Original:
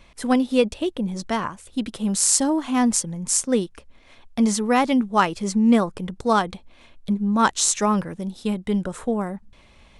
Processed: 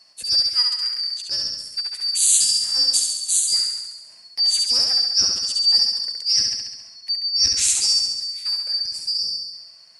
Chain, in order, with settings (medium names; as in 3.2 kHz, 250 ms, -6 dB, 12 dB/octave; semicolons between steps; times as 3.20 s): four frequency bands reordered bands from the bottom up 2341; pre-emphasis filter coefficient 0.8; flutter echo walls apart 11.7 m, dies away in 1.1 s; trim +2 dB